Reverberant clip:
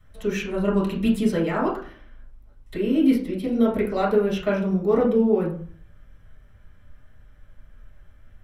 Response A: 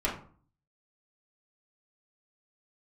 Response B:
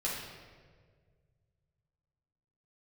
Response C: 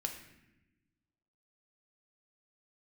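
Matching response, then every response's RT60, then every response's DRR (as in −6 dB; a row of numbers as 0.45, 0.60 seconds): A; 0.45, 1.7, 1.0 seconds; −6.5, −6.0, 3.0 decibels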